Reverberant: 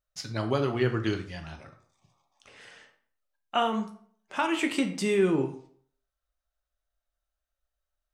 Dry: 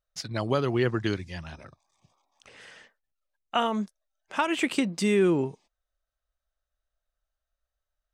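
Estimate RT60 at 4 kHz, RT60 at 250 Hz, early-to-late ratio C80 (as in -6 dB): 0.40 s, 0.55 s, 14.0 dB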